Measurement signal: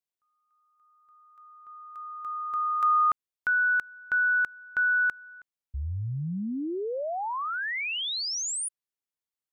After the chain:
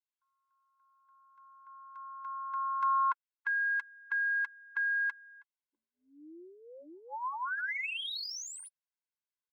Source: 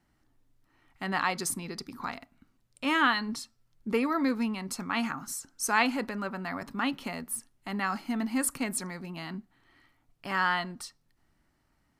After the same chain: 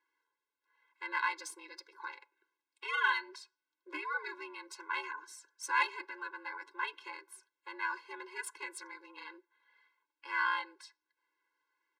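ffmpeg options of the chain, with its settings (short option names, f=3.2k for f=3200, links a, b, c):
-filter_complex "[0:a]aeval=exprs='val(0)*sin(2*PI*150*n/s)':c=same,aecho=1:1:5.9:0.38,acrossover=split=150|1600[a][b][c];[c]adynamicsmooth=sensitivity=2.5:basefreq=4.9k[d];[a][b][d]amix=inputs=3:normalize=0,lowshelf=f=740:t=q:w=1.5:g=-13,afftfilt=real='re*eq(mod(floor(b*sr/1024/280),2),1)':imag='im*eq(mod(floor(b*sr/1024/280),2),1)':win_size=1024:overlap=0.75"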